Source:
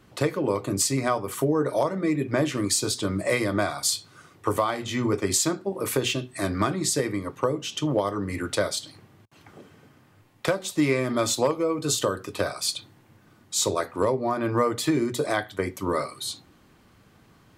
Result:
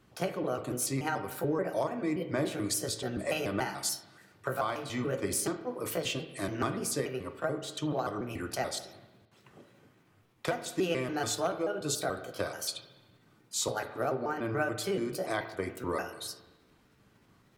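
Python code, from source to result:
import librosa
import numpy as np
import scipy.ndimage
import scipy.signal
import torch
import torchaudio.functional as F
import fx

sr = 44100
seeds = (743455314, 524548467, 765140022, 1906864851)

y = fx.pitch_trill(x, sr, semitones=4.0, every_ms=144)
y = fx.rev_spring(y, sr, rt60_s=1.1, pass_ms=(36, 45), chirp_ms=50, drr_db=9.5)
y = y * 10.0 ** (-7.5 / 20.0)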